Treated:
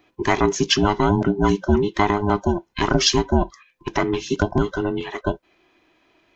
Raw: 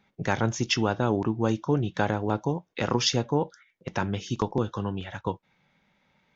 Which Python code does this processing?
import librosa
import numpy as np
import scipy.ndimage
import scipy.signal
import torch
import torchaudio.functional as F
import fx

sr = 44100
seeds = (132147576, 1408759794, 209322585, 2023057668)

y = fx.band_invert(x, sr, width_hz=500)
y = y * librosa.db_to_amplitude(7.0)